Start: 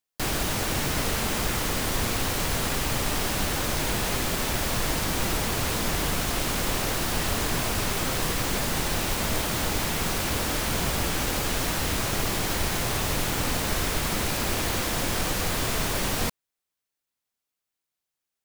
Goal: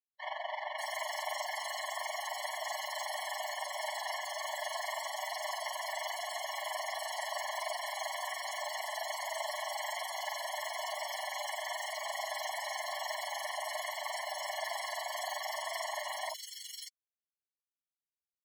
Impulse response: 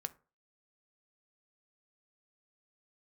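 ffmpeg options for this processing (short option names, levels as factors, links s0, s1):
-filter_complex "[0:a]afftdn=nr=34:nf=-33,tremolo=f=23:d=0.71,acrossover=split=930|3200[s0][s1][s2];[s0]adelay=40[s3];[s2]adelay=590[s4];[s3][s1][s4]amix=inputs=3:normalize=0,afftfilt=real='re*eq(mod(floor(b*sr/1024/570),2),1)':imag='im*eq(mod(floor(b*sr/1024/570),2),1)':win_size=1024:overlap=0.75,volume=1.41"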